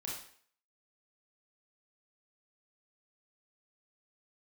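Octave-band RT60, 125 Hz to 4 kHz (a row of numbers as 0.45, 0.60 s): 0.45, 0.50, 0.55, 0.55, 0.55, 0.50 s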